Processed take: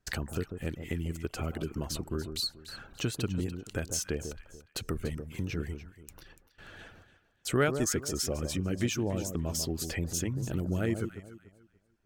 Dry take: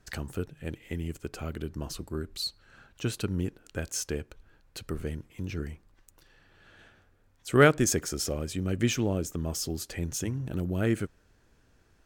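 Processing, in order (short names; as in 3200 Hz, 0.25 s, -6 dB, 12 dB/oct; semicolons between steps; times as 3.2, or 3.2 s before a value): gate with hold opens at -49 dBFS; reverb removal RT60 0.62 s; compressor 2:1, threshold -43 dBFS, peak gain reduction 15.5 dB; on a send: echo with dull and thin repeats by turns 0.145 s, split 1100 Hz, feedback 50%, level -7.5 dB; on the sum: gain +7.5 dB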